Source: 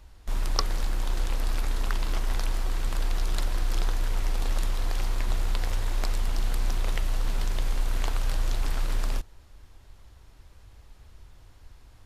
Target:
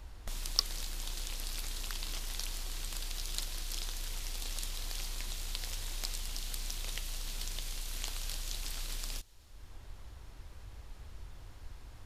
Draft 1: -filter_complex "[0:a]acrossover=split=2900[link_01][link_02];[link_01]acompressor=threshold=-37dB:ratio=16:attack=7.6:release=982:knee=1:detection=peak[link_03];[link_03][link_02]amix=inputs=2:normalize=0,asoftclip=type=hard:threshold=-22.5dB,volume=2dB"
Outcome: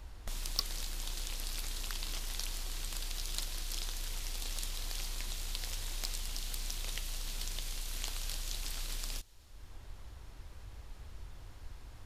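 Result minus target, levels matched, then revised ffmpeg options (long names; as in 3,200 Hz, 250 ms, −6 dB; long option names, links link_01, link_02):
hard clipping: distortion +12 dB
-filter_complex "[0:a]acrossover=split=2900[link_01][link_02];[link_01]acompressor=threshold=-37dB:ratio=16:attack=7.6:release=982:knee=1:detection=peak[link_03];[link_03][link_02]amix=inputs=2:normalize=0,asoftclip=type=hard:threshold=-12.5dB,volume=2dB"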